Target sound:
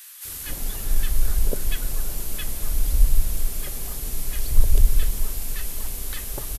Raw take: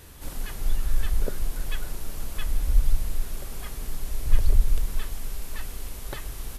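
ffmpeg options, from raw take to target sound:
ffmpeg -i in.wav -filter_complex "[0:a]highshelf=frequency=6500:gain=10,acrossover=split=1200[link_01][link_02];[link_01]adelay=250[link_03];[link_03][link_02]amix=inputs=2:normalize=0,volume=3dB" out.wav

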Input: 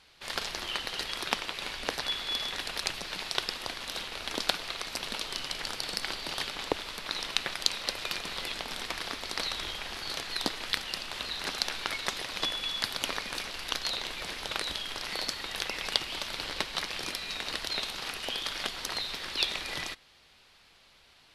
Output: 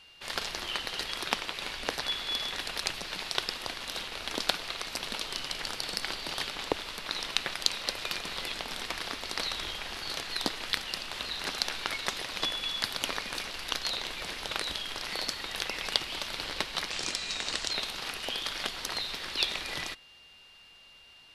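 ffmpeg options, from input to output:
ffmpeg -i in.wav -filter_complex "[0:a]aeval=exprs='val(0)+0.002*sin(2*PI*2800*n/s)':channel_layout=same,asettb=1/sr,asplit=3[link_01][link_02][link_03];[link_01]atrim=end=16.914[link_04];[link_02]atrim=start=16.91:end=17.72,asetpts=PTS-STARTPTS,afade=type=in:duration=0.004:curve=qsin,afade=type=out:start_time=0.806:duration=0.004:curve=qsin,lowpass=frequency=7500:width_type=q:width=2.9[link_05];[link_03]atrim=start=17.716[link_06];[link_04][link_05]acrossfade=duration=0.004:curve1=hsin:curve2=qsin[link_07];[link_07][link_06]acrossfade=duration=0.004:curve1=qsin:curve2=hsin" out.wav

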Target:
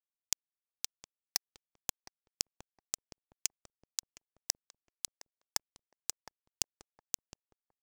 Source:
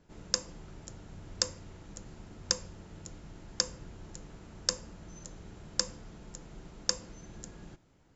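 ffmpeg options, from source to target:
ffmpeg -i in.wav -filter_complex "[0:a]highpass=93,tiltshelf=frequency=650:gain=-8,acompressor=threshold=-44dB:ratio=16,acrusher=bits=4:mix=0:aa=0.000001,aphaser=in_gain=1:out_gain=1:delay=3.2:decay=0.26:speed=0.41:type=triangular,asplit=2[link_01][link_02];[link_02]adelay=743,lowpass=frequency=830:poles=1,volume=-7.5dB,asplit=2[link_03][link_04];[link_04]adelay=743,lowpass=frequency=830:poles=1,volume=0.32,asplit=2[link_05][link_06];[link_06]adelay=743,lowpass=frequency=830:poles=1,volume=0.32,asplit=2[link_07][link_08];[link_08]adelay=743,lowpass=frequency=830:poles=1,volume=0.32[link_09];[link_01][link_03][link_05][link_07][link_09]amix=inputs=5:normalize=0,asetrate=45938,aresample=44100,volume=12dB" out.wav

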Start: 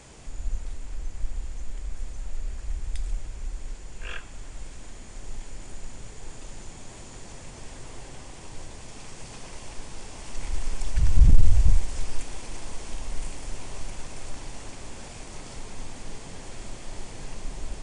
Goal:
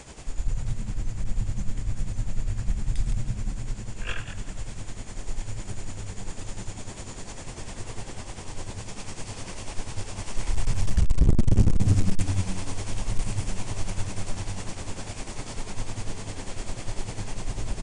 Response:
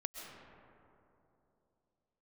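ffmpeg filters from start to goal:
-filter_complex "[0:a]asplit=4[link_01][link_02][link_03][link_04];[link_02]adelay=165,afreqshift=90,volume=-11dB[link_05];[link_03]adelay=330,afreqshift=180,volume=-21.2dB[link_06];[link_04]adelay=495,afreqshift=270,volume=-31.3dB[link_07];[link_01][link_05][link_06][link_07]amix=inputs=4:normalize=0,asoftclip=type=hard:threshold=-18dB,tremolo=f=10:d=0.62,volume=6.5dB"

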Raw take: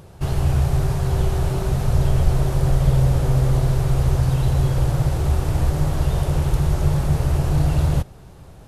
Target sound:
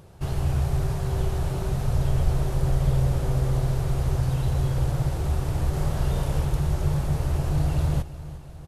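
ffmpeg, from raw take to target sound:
ffmpeg -i in.wav -filter_complex "[0:a]asettb=1/sr,asplit=3[link_01][link_02][link_03];[link_01]atrim=end=5.704[link_04];[link_02]atrim=start=5.7:end=6.45,asetpts=PTS-STARTPTS,afade=type=in:duration=0.004:curve=qsin,afade=type=out:start_time=0.746:duration=0.004:curve=qsin,asplit=2[link_05][link_06];[link_06]adelay=31,volume=-3dB[link_07];[link_05][link_07]amix=inputs=2:normalize=0,atrim=end_sample=33075[link_08];[link_03]atrim=start=6.446[link_09];[link_04][link_08]acrossfade=duration=0.004:curve1=hsin:curve2=qsin[link_10];[link_10][link_09]acrossfade=duration=0.004:curve1=qsin:curve2=hsin,aecho=1:1:355|710|1065|1420|1775:0.158|0.0903|0.0515|0.0294|0.0167,volume=-5.5dB" out.wav

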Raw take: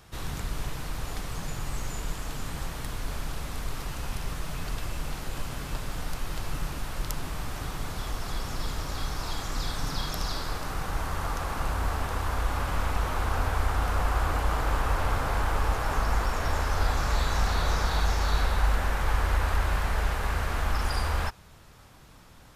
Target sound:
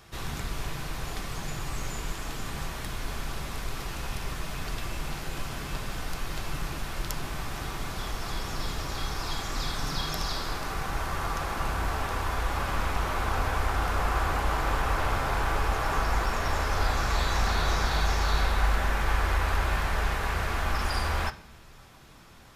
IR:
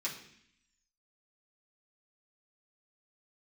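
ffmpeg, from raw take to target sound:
-filter_complex "[0:a]asplit=2[link_01][link_02];[1:a]atrim=start_sample=2205,lowpass=5700[link_03];[link_02][link_03]afir=irnorm=-1:irlink=0,volume=-7.5dB[link_04];[link_01][link_04]amix=inputs=2:normalize=0"

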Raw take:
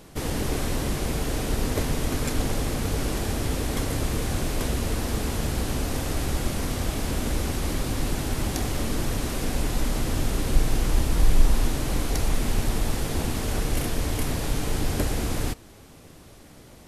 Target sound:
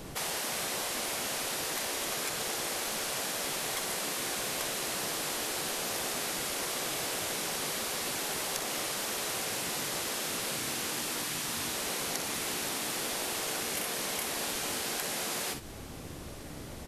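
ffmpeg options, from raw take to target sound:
ffmpeg -i in.wav -filter_complex "[0:a]aecho=1:1:46|60:0.251|0.282,acrossover=split=1000|2500[link_01][link_02][link_03];[link_01]acompressor=threshold=-33dB:ratio=4[link_04];[link_02]acompressor=threshold=-47dB:ratio=4[link_05];[link_03]acompressor=threshold=-38dB:ratio=4[link_06];[link_04][link_05][link_06]amix=inputs=3:normalize=0,afftfilt=real='re*lt(hypot(re,im),0.0501)':imag='im*lt(hypot(re,im),0.0501)':win_size=1024:overlap=0.75,volume=4.5dB" out.wav

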